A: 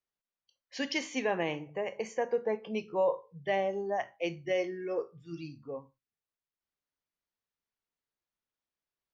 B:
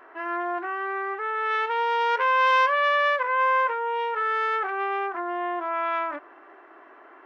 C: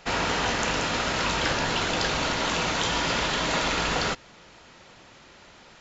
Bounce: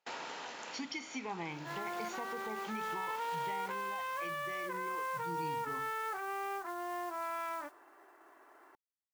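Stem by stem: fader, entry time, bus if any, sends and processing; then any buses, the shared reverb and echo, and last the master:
-0.5 dB, 0.00 s, bus A, no send, comb 0.9 ms, depth 96%
-11.5 dB, 1.50 s, no bus, no send, modulation noise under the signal 17 dB
-12.0 dB, 0.00 s, bus A, no send, HPF 320 Hz 12 dB/oct; auto duck -7 dB, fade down 0.55 s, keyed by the first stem
bus A: 0.0 dB, gate with hold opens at -41 dBFS; compressor 3:1, threshold -41 dBFS, peak gain reduction 12.5 dB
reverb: off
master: bell 880 Hz +5 dB 0.23 oct; limiter -29.5 dBFS, peak gain reduction 10 dB

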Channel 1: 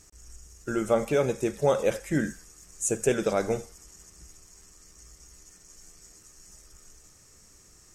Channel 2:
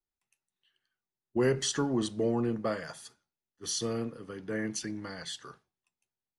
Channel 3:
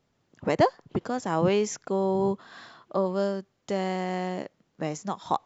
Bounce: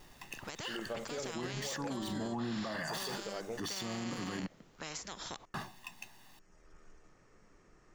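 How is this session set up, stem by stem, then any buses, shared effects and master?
0.0 dB, 0.00 s, bus A, no send, low-pass opened by the level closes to 1800 Hz, open at -21 dBFS; auto duck -12 dB, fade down 0.25 s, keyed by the second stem
-6.0 dB, 0.00 s, muted 4.47–5.54, bus A, no send, median filter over 5 samples; comb 1.1 ms, depth 73%; fast leveller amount 100%
-12.0 dB, 0.00 s, no bus, no send, spectral compressor 4:1
bus A: 0.0 dB, bell 73 Hz -12.5 dB 1.3 oct; limiter -29 dBFS, peak gain reduction 10.5 dB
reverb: off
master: limiter -29.5 dBFS, peak gain reduction 8 dB

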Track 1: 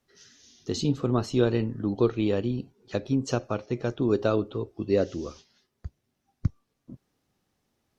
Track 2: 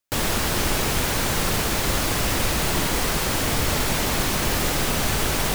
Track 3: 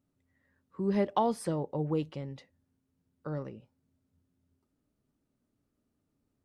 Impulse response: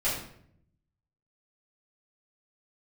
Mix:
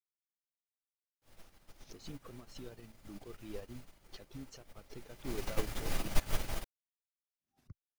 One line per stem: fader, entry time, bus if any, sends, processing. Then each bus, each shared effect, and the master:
-1.0 dB, 1.25 s, muted 6.11–7.38, bus A, no send, backwards sustainer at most 150 dB/s
4.98 s -21.5 dB -> 5.4 s -13 dB, 1.10 s, bus A, send -6.5 dB, notch 7700 Hz, Q 23
off
bus A: 0.0 dB, reverb removal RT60 1.2 s; limiter -23 dBFS, peak gain reduction 12 dB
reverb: on, RT60 0.65 s, pre-delay 4 ms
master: upward expander 2.5:1, over -44 dBFS

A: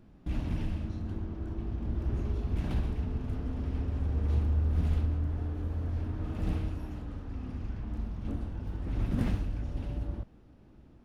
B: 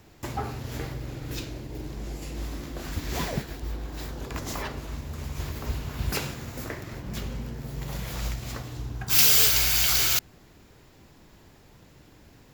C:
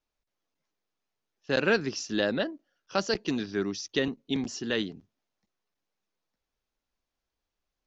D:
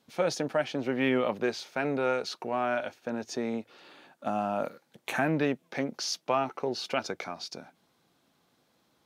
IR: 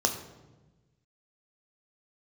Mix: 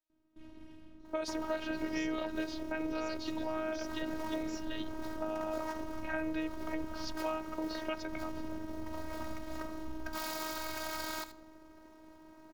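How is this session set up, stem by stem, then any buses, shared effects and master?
-13.0 dB, 0.10 s, no send, no echo send, dry
+2.0 dB, 1.05 s, send -19 dB, echo send -14 dB, median filter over 15 samples; limiter -27 dBFS, peak gain reduction 10 dB
-7.0 dB, 0.00 s, no send, no echo send, limiter -16.5 dBFS, peak gain reduction 5.5 dB
-1.5 dB, 0.95 s, no send, no echo send, low-pass opened by the level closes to 520 Hz, open at -24 dBFS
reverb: on, RT60 1.2 s, pre-delay 3 ms
echo: echo 78 ms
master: HPF 75 Hz 12 dB/oct; robotiser 316 Hz; compressor 2.5:1, threshold -33 dBFS, peak gain reduction 7.5 dB

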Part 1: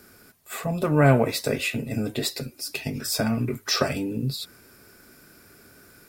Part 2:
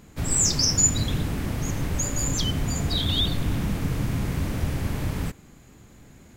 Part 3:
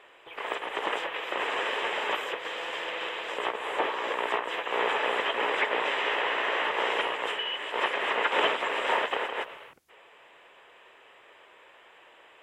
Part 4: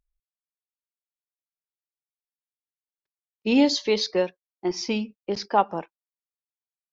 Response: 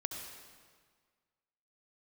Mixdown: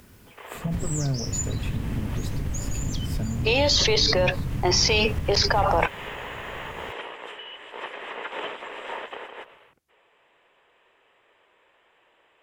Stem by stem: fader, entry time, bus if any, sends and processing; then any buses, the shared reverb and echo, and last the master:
-9.0 dB, 0.00 s, bus A, no send, low shelf 340 Hz +11 dB
-1.0 dB, 0.55 s, bus A, no send, dry
-8.5 dB, 0.00 s, bus A, no send, dry
-5.0 dB, 0.00 s, no bus, no send, HPF 470 Hz 24 dB/oct; fast leveller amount 100%
bus A: 0.0 dB, low shelf 220 Hz +9 dB; compressor 5:1, threshold -25 dBFS, peak gain reduction 15 dB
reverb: off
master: dry

